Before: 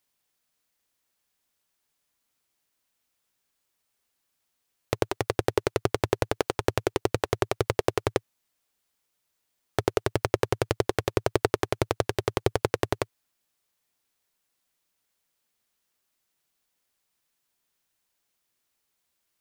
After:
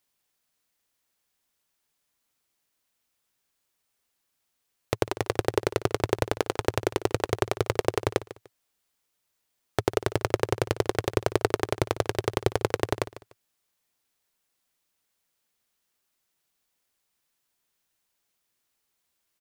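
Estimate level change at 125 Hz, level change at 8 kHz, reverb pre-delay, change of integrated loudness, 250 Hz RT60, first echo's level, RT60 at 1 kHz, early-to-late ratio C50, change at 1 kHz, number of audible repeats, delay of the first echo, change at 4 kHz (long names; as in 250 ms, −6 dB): 0.0 dB, 0.0 dB, no reverb audible, 0.0 dB, no reverb audible, −16.0 dB, no reverb audible, no reverb audible, 0.0 dB, 2, 148 ms, 0.0 dB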